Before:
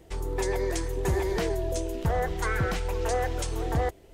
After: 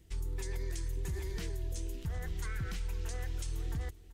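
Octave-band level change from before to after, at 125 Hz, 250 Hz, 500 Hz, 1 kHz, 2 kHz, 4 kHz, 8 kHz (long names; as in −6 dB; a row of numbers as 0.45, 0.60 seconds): −7.5, −14.0, −19.5, −21.5, −13.5, −9.5, −9.0 decibels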